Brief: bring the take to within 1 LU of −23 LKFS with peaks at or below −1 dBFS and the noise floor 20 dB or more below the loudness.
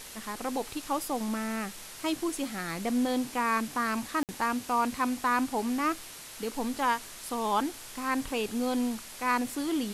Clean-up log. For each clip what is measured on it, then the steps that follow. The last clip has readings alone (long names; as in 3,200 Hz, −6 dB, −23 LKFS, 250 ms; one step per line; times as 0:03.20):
number of dropouts 1; longest dropout 58 ms; background noise floor −45 dBFS; target noise floor −51 dBFS; integrated loudness −31.0 LKFS; sample peak −15.5 dBFS; target loudness −23.0 LKFS
→ repair the gap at 0:04.23, 58 ms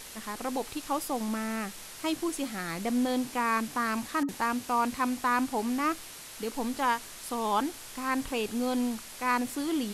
number of dropouts 0; background noise floor −45 dBFS; target noise floor −51 dBFS
→ noise reduction from a noise print 6 dB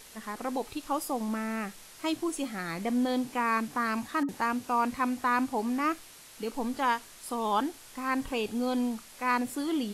background noise floor −51 dBFS; integrated loudness −31.0 LKFS; sample peak −15.5 dBFS; target loudness −23.0 LKFS
→ level +8 dB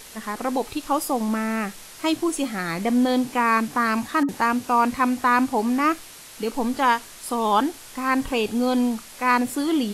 integrated loudness −23.0 LKFS; sample peak −7.5 dBFS; background noise floor −43 dBFS